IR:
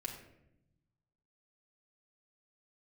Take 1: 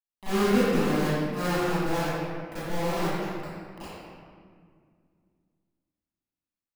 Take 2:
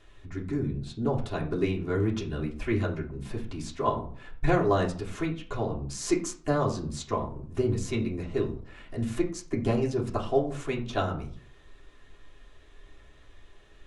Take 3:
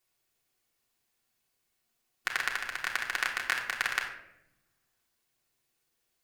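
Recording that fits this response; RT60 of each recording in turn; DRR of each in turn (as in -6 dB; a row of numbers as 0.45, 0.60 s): 3; 2.0, 0.50, 0.80 s; -17.5, -4.5, -1.5 dB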